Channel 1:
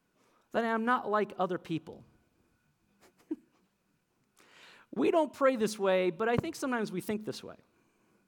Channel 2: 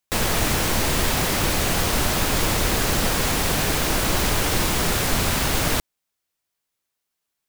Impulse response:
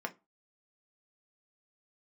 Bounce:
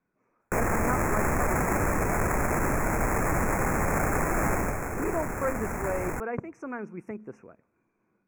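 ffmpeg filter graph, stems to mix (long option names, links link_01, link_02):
-filter_complex "[0:a]lowpass=3200,volume=-3.5dB[link_01];[1:a]alimiter=limit=-14.5dB:level=0:latency=1:release=11,acrusher=samples=15:mix=1:aa=0.000001,adelay=400,volume=-2dB,afade=type=out:start_time=4.52:duration=0.3:silence=0.473151[link_02];[link_01][link_02]amix=inputs=2:normalize=0,asuperstop=centerf=3800:order=12:qfactor=1.2"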